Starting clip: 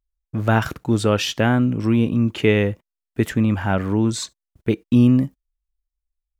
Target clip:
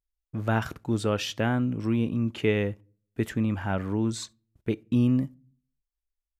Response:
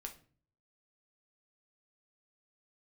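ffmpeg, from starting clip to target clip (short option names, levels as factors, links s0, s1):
-filter_complex "[0:a]asplit=2[s0][s1];[1:a]atrim=start_sample=2205,highshelf=f=4000:g=-9[s2];[s1][s2]afir=irnorm=-1:irlink=0,volume=0.251[s3];[s0][s3]amix=inputs=2:normalize=0,aresample=32000,aresample=44100,volume=0.355"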